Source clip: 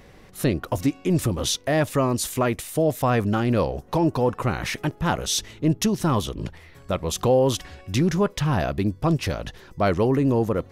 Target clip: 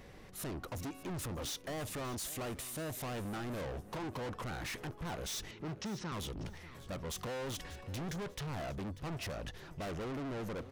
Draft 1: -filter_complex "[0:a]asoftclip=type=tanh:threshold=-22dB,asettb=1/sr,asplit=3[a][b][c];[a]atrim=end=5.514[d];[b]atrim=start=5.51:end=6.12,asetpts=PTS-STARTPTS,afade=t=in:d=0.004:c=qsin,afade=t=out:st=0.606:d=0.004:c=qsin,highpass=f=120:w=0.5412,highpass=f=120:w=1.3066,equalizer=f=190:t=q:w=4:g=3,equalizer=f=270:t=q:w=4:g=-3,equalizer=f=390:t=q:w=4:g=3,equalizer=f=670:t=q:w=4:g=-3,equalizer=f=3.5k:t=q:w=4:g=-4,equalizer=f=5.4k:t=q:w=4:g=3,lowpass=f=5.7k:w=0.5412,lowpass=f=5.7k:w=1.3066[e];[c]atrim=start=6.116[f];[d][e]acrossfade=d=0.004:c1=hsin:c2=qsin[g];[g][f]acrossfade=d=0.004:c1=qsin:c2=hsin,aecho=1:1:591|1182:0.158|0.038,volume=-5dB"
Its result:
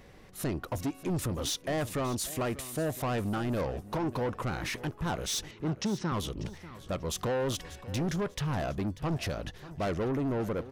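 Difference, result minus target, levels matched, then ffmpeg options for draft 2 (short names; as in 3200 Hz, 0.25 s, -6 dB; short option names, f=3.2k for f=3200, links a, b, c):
soft clip: distortion -6 dB
-filter_complex "[0:a]asoftclip=type=tanh:threshold=-33.5dB,asettb=1/sr,asplit=3[a][b][c];[a]atrim=end=5.514[d];[b]atrim=start=5.51:end=6.12,asetpts=PTS-STARTPTS,afade=t=in:d=0.004:c=qsin,afade=t=out:st=0.606:d=0.004:c=qsin,highpass=f=120:w=0.5412,highpass=f=120:w=1.3066,equalizer=f=190:t=q:w=4:g=3,equalizer=f=270:t=q:w=4:g=-3,equalizer=f=390:t=q:w=4:g=3,equalizer=f=670:t=q:w=4:g=-3,equalizer=f=3.5k:t=q:w=4:g=-4,equalizer=f=5.4k:t=q:w=4:g=3,lowpass=f=5.7k:w=0.5412,lowpass=f=5.7k:w=1.3066[e];[c]atrim=start=6.116[f];[d][e]acrossfade=d=0.004:c1=hsin:c2=qsin[g];[g][f]acrossfade=d=0.004:c1=qsin:c2=hsin,aecho=1:1:591|1182:0.158|0.038,volume=-5dB"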